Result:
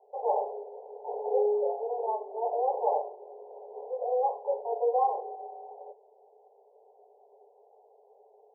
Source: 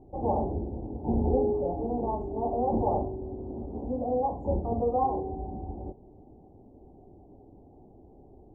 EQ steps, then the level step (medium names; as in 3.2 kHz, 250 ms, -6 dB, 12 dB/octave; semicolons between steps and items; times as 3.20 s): Chebyshev high-pass 410 Hz, order 10; brick-wall FIR low-pass 1.1 kHz; +1.5 dB